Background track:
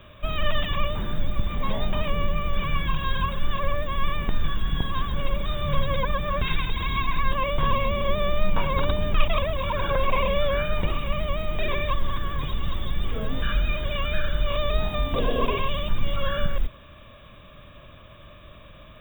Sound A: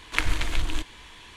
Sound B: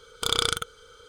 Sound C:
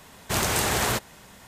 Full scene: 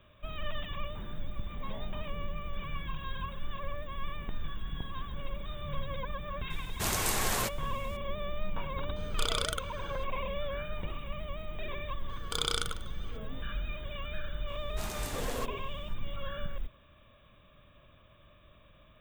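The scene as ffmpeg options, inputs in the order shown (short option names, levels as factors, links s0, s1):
-filter_complex "[3:a]asplit=2[s0][s1];[2:a]asplit=2[s2][s3];[0:a]volume=0.237[s4];[s0]highshelf=f=5800:g=5[s5];[s2]alimiter=limit=0.188:level=0:latency=1:release=60[s6];[s3]aecho=1:1:149:0.15[s7];[s5]atrim=end=1.47,asetpts=PTS-STARTPTS,volume=0.376,afade=t=in:d=0.004:c=hsin,afade=t=out:st=1.466:d=0.004:c=hsin,adelay=286650S[s8];[s6]atrim=end=1.08,asetpts=PTS-STARTPTS,volume=0.708,afade=t=in:d=0.004:c=hsin,afade=t=out:st=1.076:d=0.004:c=hsin,adelay=8960[s9];[s7]atrim=end=1.08,asetpts=PTS-STARTPTS,volume=0.422,afade=t=in:d=0.004:c=hsin,afade=t=out:st=1.076:d=0.004:c=hsin,adelay=12090[s10];[s1]atrim=end=1.47,asetpts=PTS-STARTPTS,volume=0.15,afade=t=in:d=0.004:c=hsin,afade=t=out:st=1.466:d=0.004:c=hsin,adelay=14470[s11];[s4][s8][s9][s10][s11]amix=inputs=5:normalize=0"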